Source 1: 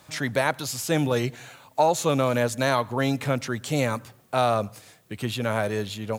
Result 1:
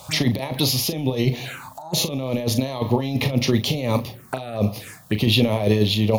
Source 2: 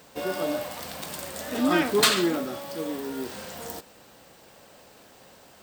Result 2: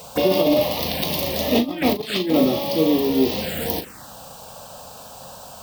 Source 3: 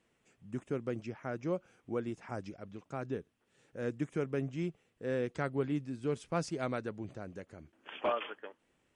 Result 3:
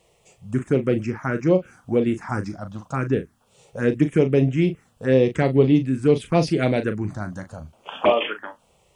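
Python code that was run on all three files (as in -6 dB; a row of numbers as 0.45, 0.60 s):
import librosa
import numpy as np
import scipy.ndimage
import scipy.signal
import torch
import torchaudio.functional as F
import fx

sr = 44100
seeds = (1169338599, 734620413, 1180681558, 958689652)

y = fx.over_compress(x, sr, threshold_db=-28.0, ratio=-0.5)
y = fx.env_phaser(y, sr, low_hz=260.0, high_hz=1500.0, full_db=-30.0)
y = fx.doubler(y, sr, ms=38.0, db=-9.5)
y = y * 10.0 ** (-22 / 20.0) / np.sqrt(np.mean(np.square(y)))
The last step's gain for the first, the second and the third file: +9.5, +11.5, +17.5 dB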